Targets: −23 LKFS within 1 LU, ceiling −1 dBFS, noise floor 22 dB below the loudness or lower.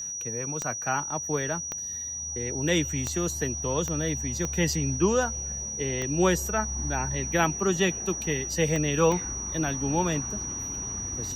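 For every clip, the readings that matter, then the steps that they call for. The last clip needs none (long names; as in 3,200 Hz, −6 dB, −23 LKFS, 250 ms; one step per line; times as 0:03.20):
number of clicks 8; interfering tone 5,800 Hz; level of the tone −32 dBFS; integrated loudness −27.0 LKFS; sample peak −9.5 dBFS; target loudness −23.0 LKFS
→ click removal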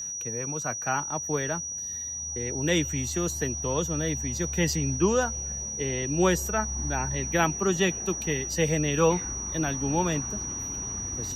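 number of clicks 0; interfering tone 5,800 Hz; level of the tone −32 dBFS
→ notch filter 5,800 Hz, Q 30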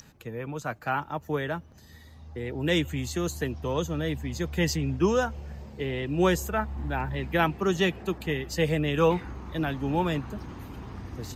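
interfering tone none found; integrated loudness −28.5 LKFS; sample peak −10.0 dBFS; target loudness −23.0 LKFS
→ level +5.5 dB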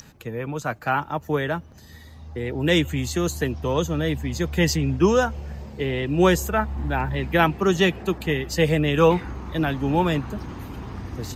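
integrated loudness −23.0 LKFS; sample peak −4.5 dBFS; background noise floor −46 dBFS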